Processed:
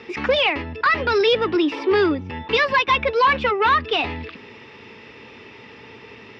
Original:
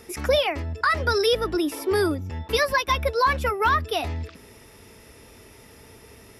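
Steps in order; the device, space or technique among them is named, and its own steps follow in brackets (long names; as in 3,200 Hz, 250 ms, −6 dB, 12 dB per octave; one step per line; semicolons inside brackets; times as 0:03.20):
overdrive pedal into a guitar cabinet (mid-hump overdrive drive 15 dB, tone 2,100 Hz, clips at −9.5 dBFS; loudspeaker in its box 92–4,400 Hz, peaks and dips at 120 Hz +5 dB, 220 Hz +4 dB, 650 Hz −10 dB, 1,400 Hz −5 dB, 2,700 Hz +5 dB)
level +3 dB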